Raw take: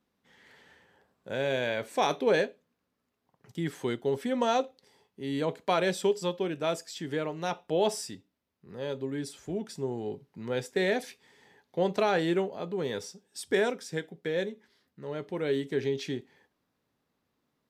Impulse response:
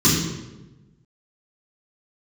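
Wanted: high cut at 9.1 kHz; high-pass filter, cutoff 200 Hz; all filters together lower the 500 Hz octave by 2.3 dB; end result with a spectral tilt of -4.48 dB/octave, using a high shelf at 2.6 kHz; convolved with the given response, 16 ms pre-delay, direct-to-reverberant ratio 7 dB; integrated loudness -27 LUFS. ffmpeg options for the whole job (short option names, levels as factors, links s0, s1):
-filter_complex "[0:a]highpass=200,lowpass=9100,equalizer=f=500:t=o:g=-3,highshelf=f=2600:g=9,asplit=2[s0][s1];[1:a]atrim=start_sample=2205,adelay=16[s2];[s1][s2]afir=irnorm=-1:irlink=0,volume=0.0501[s3];[s0][s3]amix=inputs=2:normalize=0,volume=1.26"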